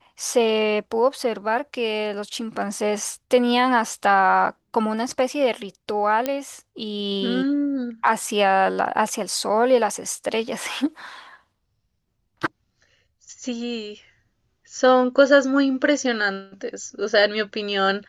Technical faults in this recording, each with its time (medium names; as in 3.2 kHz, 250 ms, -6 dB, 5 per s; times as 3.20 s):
6.26 s: pop -9 dBFS